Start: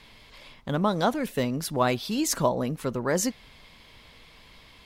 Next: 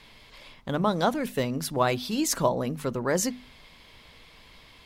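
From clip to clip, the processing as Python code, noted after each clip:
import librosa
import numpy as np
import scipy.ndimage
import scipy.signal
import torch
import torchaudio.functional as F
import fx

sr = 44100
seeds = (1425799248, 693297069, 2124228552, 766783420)

y = fx.hum_notches(x, sr, base_hz=50, count=5)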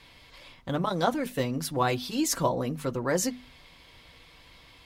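y = fx.notch_comb(x, sr, f0_hz=210.0)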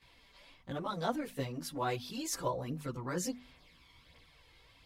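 y = fx.chorus_voices(x, sr, voices=2, hz=0.72, base_ms=16, depth_ms=2.6, mix_pct=70)
y = F.gain(torch.from_numpy(y), -6.5).numpy()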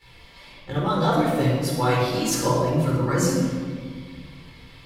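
y = fx.room_shoebox(x, sr, seeds[0], volume_m3=2300.0, walls='mixed', distance_m=4.2)
y = F.gain(torch.from_numpy(y), 7.5).numpy()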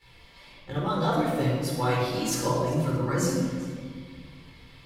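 y = x + 10.0 ** (-19.0 / 20.0) * np.pad(x, (int(392 * sr / 1000.0), 0))[:len(x)]
y = F.gain(torch.from_numpy(y), -4.5).numpy()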